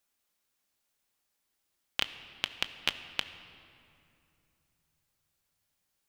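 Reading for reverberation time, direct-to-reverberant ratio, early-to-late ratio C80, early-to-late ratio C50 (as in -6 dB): 2.6 s, 9.0 dB, 12.5 dB, 11.5 dB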